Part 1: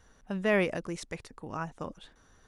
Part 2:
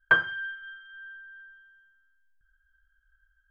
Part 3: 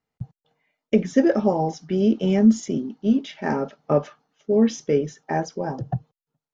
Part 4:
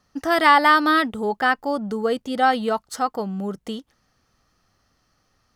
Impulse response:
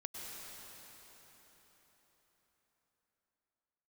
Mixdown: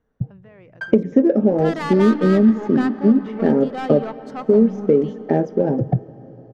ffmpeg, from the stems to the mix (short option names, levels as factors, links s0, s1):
-filter_complex "[0:a]alimiter=limit=0.0631:level=0:latency=1:release=101,volume=0.237[s0];[1:a]aecho=1:1:1.3:0.83,adelay=700,volume=0.211[s1];[2:a]equalizer=f=125:t=o:w=1:g=4,equalizer=f=250:t=o:w=1:g=10,equalizer=f=500:t=o:w=1:g=11,equalizer=f=1000:t=o:w=1:g=-7,equalizer=f=4000:t=o:w=1:g=-10,acompressor=threshold=0.178:ratio=4,volume=1.19,asplit=3[s2][s3][s4];[s3]volume=0.168[s5];[3:a]equalizer=f=76:w=0.4:g=11.5,aeval=exprs='(tanh(7.08*val(0)+0.2)-tanh(0.2))/7.08':c=same,adelay=1350,volume=0.376,asplit=2[s6][s7];[s7]volume=0.501[s8];[s4]apad=whole_len=185362[s9];[s1][s9]sidechaincompress=threshold=0.0794:ratio=8:attack=6.1:release=1410[s10];[4:a]atrim=start_sample=2205[s11];[s5][s8]amix=inputs=2:normalize=0[s12];[s12][s11]afir=irnorm=-1:irlink=0[s13];[s0][s10][s2][s6][s13]amix=inputs=5:normalize=0,adynamicsmooth=sensitivity=2:basefreq=2500"